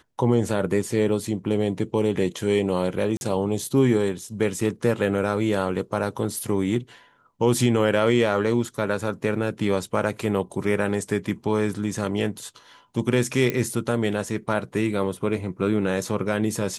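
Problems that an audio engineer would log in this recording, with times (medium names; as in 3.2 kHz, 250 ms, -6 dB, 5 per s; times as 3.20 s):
3.17–3.21 s: dropout 41 ms
13.50 s: pop -10 dBFS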